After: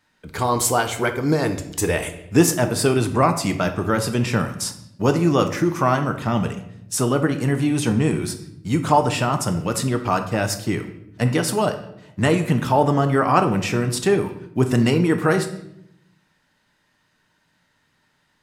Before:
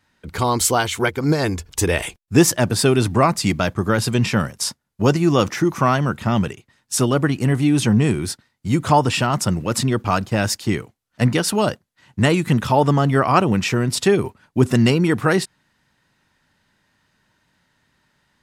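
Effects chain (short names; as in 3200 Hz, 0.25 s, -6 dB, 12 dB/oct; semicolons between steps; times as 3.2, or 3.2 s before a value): low shelf 150 Hz -6 dB; shoebox room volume 180 m³, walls mixed, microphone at 0.46 m; dynamic EQ 3900 Hz, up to -5 dB, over -34 dBFS, Q 0.81; gain -1 dB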